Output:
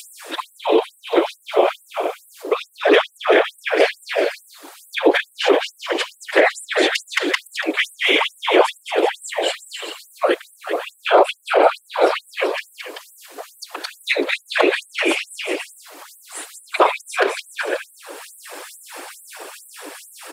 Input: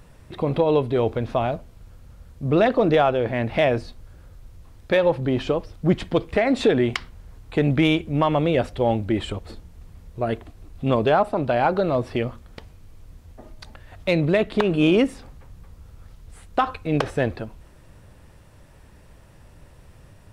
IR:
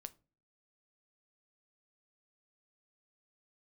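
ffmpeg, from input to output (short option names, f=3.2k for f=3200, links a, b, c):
-filter_complex "[0:a]afreqshift=-130,aeval=exprs='val(0)*sin(2*PI*78*n/s)':c=same,aecho=1:1:220|385|508.8|601.6|671.2:0.631|0.398|0.251|0.158|0.1,afftfilt=real='hypot(re,im)*cos(2*PI*random(0))':imag='hypot(re,im)*sin(2*PI*random(1))':win_size=512:overlap=0.75,asplit=2[a][b];[b]acompressor=threshold=-36dB:ratio=16,volume=-0.5dB[c];[a][c]amix=inputs=2:normalize=0,bass=f=250:g=-6,treble=f=4k:g=3,acompressor=mode=upward:threshold=-40dB:ratio=2.5,equalizer=f=5.8k:w=4:g=-3,alimiter=level_in=20dB:limit=-1dB:release=50:level=0:latency=1,afftfilt=real='re*gte(b*sr/1024,280*pow(7900/280,0.5+0.5*sin(2*PI*2.3*pts/sr)))':imag='im*gte(b*sr/1024,280*pow(7900/280,0.5+0.5*sin(2*PI*2.3*pts/sr)))':win_size=1024:overlap=0.75,volume=-1dB"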